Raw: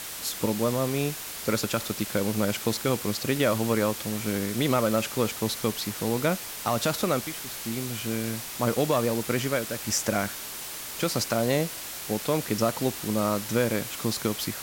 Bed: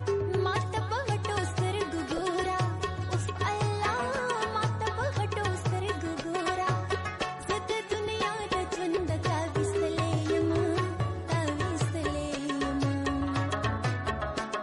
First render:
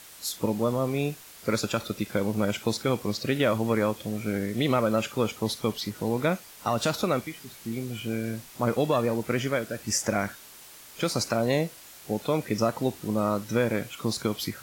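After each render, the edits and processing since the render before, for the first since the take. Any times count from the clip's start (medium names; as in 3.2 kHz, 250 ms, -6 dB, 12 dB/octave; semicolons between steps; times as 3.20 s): noise print and reduce 11 dB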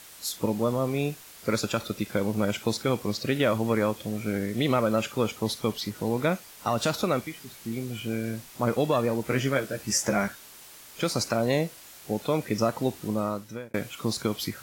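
9.24–10.28 s: doubling 15 ms -5 dB; 13.06–13.74 s: fade out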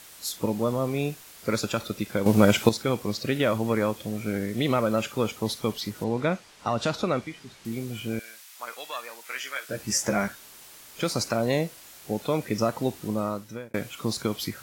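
2.26–2.69 s: gain +8.5 dB; 6.04–7.65 s: distance through air 66 m; 8.19–9.69 s: high-pass 1.4 kHz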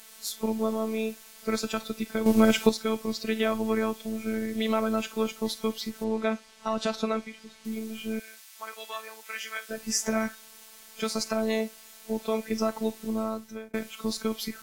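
robot voice 220 Hz; hard clipper -6 dBFS, distortion -39 dB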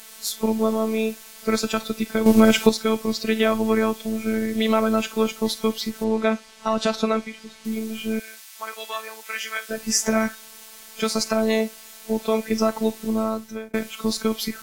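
trim +6.5 dB; peak limiter -1 dBFS, peak gain reduction 1.5 dB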